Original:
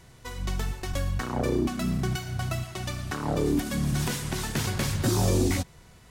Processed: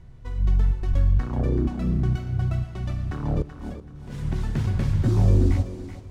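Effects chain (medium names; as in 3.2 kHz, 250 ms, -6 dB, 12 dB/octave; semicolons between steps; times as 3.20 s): RIAA curve playback; 3.42–4.18 s: compressor with a negative ratio -33 dBFS, ratio -1; thinning echo 380 ms, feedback 27%, high-pass 420 Hz, level -9 dB; reverberation RT60 4.9 s, pre-delay 68 ms, DRR 18.5 dB; trim -6 dB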